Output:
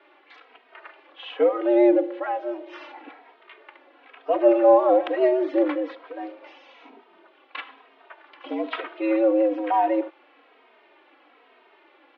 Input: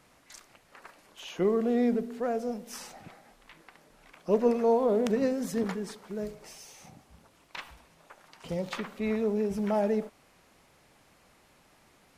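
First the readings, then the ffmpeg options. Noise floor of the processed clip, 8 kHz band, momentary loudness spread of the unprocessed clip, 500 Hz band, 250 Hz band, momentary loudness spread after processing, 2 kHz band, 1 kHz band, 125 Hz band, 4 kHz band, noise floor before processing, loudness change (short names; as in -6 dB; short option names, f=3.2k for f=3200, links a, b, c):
-58 dBFS, under -25 dB, 19 LU, +7.5 dB, +5.0 dB, 21 LU, +6.5 dB, +11.0 dB, under -20 dB, n/a, -63 dBFS, +7.5 dB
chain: -filter_complex "[0:a]highpass=f=180:t=q:w=0.5412,highpass=f=180:t=q:w=1.307,lowpass=f=3.3k:t=q:w=0.5176,lowpass=f=3.3k:t=q:w=0.7071,lowpass=f=3.3k:t=q:w=1.932,afreqshift=110,acontrast=55,asplit=2[a][b];[b]adelay=2.9,afreqshift=-1.1[c];[a][c]amix=inputs=2:normalize=1,volume=3.5dB"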